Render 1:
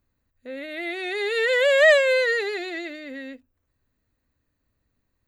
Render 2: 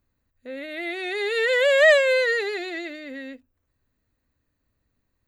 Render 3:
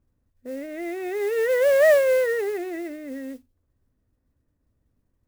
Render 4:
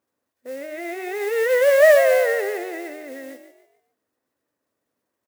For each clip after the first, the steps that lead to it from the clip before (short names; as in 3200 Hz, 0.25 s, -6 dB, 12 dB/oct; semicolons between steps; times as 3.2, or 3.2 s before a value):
nothing audible
Gaussian blur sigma 3.6 samples; tilt shelf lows +5 dB, about 790 Hz; modulation noise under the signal 22 dB
HPF 490 Hz 12 dB/oct; on a send: frequency-shifting echo 0.145 s, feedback 36%, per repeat +48 Hz, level -10 dB; on the sum: gain +4.5 dB